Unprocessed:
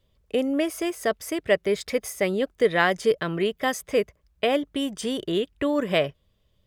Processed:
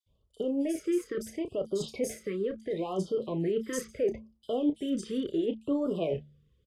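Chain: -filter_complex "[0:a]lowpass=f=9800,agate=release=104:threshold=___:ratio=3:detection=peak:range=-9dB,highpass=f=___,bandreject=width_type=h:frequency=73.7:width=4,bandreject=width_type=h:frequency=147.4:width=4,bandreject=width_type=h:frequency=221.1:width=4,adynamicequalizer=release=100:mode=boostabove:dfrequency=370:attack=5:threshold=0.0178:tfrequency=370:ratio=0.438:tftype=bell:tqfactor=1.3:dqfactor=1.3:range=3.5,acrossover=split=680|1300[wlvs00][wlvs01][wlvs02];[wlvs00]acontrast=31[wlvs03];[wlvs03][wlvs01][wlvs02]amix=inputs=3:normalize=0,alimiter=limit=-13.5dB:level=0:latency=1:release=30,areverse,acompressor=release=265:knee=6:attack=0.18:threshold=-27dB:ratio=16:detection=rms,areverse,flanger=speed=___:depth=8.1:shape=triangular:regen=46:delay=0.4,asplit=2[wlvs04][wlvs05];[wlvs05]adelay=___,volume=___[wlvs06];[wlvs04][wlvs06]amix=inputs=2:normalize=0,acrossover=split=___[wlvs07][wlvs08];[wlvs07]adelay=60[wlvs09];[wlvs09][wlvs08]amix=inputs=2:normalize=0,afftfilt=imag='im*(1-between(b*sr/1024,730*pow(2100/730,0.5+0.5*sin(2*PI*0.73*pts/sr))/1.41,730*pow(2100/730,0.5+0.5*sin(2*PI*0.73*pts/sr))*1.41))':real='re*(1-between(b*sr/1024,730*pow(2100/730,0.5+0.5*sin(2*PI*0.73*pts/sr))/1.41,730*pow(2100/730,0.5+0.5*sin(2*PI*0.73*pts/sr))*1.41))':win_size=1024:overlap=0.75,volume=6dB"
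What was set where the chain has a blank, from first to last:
-51dB, 46, 0.78, 31, -10dB, 4400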